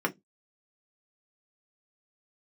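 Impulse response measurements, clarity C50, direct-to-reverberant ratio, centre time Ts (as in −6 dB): 21.0 dB, 1.5 dB, 6 ms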